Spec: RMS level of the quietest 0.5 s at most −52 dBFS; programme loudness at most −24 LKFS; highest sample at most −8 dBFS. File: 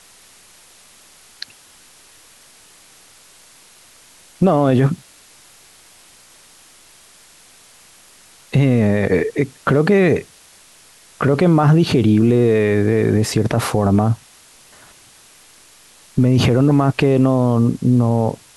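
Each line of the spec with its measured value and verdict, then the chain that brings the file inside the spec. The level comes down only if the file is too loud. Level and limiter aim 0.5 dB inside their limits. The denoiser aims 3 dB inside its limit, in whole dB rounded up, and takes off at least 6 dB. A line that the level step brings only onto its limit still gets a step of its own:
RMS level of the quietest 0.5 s −47 dBFS: out of spec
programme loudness −16.0 LKFS: out of spec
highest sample −5.0 dBFS: out of spec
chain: level −8.5 dB

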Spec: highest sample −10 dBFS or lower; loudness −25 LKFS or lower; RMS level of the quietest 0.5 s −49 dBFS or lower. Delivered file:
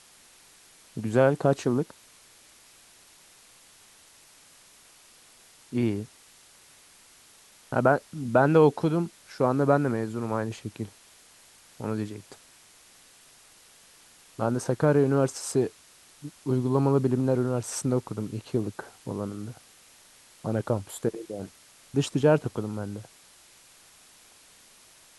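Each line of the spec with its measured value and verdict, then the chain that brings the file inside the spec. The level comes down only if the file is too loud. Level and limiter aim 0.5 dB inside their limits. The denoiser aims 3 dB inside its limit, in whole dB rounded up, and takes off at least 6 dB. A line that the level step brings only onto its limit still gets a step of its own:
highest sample −5.0 dBFS: out of spec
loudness −27.0 LKFS: in spec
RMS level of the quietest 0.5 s −55 dBFS: in spec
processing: brickwall limiter −10.5 dBFS

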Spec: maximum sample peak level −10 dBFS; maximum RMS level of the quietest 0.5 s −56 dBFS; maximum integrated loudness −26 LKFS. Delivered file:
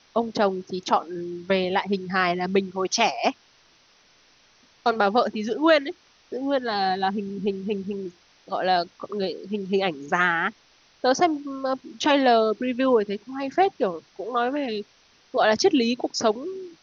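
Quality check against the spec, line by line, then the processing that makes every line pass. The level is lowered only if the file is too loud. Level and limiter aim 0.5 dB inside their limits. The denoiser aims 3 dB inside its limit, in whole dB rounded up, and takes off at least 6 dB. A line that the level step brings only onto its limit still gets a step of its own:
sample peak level −5.5 dBFS: out of spec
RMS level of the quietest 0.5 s −59 dBFS: in spec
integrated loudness −24.0 LKFS: out of spec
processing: level −2.5 dB
brickwall limiter −10.5 dBFS

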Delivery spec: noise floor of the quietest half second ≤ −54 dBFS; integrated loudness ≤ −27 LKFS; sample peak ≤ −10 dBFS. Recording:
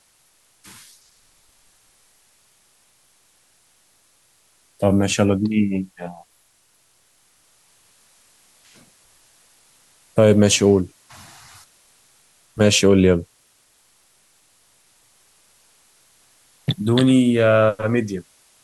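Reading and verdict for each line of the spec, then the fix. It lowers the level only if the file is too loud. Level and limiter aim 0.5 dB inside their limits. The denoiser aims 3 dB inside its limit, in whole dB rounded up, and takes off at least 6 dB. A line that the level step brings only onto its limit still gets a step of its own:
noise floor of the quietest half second −60 dBFS: in spec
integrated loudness −17.5 LKFS: out of spec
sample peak −3.5 dBFS: out of spec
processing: level −10 dB

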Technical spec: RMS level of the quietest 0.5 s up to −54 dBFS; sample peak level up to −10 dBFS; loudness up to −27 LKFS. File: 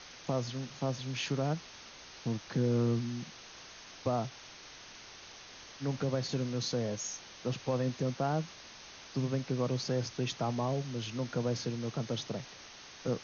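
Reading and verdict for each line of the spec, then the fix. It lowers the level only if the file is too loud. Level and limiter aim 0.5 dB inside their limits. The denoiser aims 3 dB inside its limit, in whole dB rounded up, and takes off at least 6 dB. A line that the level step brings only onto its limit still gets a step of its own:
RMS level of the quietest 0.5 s −51 dBFS: out of spec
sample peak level −19.0 dBFS: in spec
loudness −35.0 LKFS: in spec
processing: broadband denoise 6 dB, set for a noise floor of −51 dBFS

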